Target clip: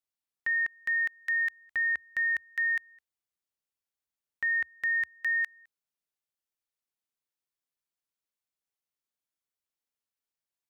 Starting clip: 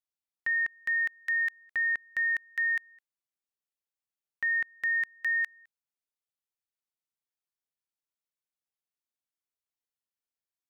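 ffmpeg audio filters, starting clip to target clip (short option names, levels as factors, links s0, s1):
-filter_complex "[0:a]asettb=1/sr,asplit=3[s0][s1][s2];[s0]atrim=end=1.314[s3];[s1]atrim=start=1.31:end=5.15,asetpts=PTS-STARTPTS,afade=t=in:d=0.004:c=qsin,afade=t=out:st=3.836:d=0.004:c=qsin,equalizer=f=70:t=o:w=0.64:g=8[s4];[s2]atrim=start=5.146[s5];[s3][s4]acrossfade=d=0.004:c1=hsin:c2=qsin[s6];[s6][s5]acrossfade=d=0.004:c1=qsin:c2=hsin"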